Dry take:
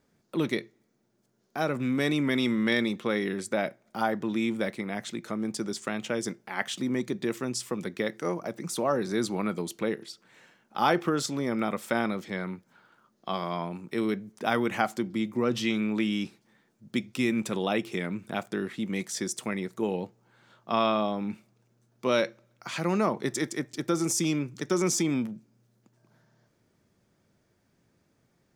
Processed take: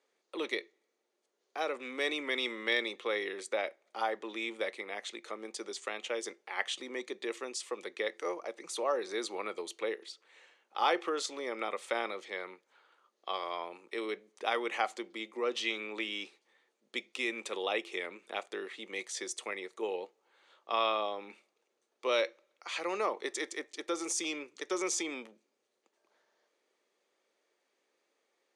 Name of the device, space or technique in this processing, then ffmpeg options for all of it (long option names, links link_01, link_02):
phone speaker on a table: -af "highpass=frequency=450:width=0.5412,highpass=frequency=450:width=1.3066,equalizer=frequency=660:width_type=q:width=4:gain=-7,equalizer=frequency=950:width_type=q:width=4:gain=-4,equalizer=frequency=1500:width_type=q:width=4:gain=-8,equalizer=frequency=5300:width_type=q:width=4:gain=-7,equalizer=frequency=7500:width_type=q:width=4:gain=-5,lowpass=frequency=8500:width=0.5412,lowpass=frequency=8500:width=1.3066"